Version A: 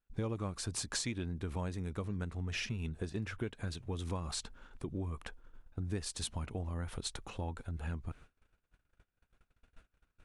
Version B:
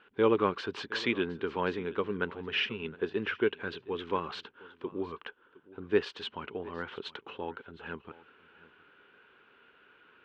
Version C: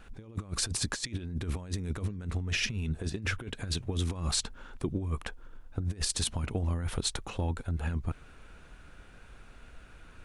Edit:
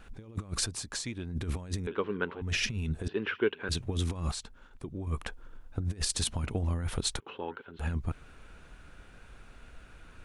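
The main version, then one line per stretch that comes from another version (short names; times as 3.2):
C
0.67–1.32 from A
1.87–2.42 from B
3.08–3.69 from B
4.32–5.07 from A
7.2–7.79 from B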